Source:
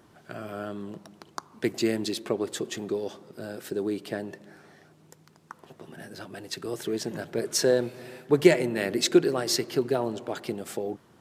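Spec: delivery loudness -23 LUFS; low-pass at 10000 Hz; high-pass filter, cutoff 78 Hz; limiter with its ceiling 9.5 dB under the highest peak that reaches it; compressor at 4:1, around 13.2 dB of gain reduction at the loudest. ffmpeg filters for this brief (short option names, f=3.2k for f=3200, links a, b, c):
-af "highpass=78,lowpass=10k,acompressor=threshold=-28dB:ratio=4,volume=14dB,alimiter=limit=-11.5dB:level=0:latency=1"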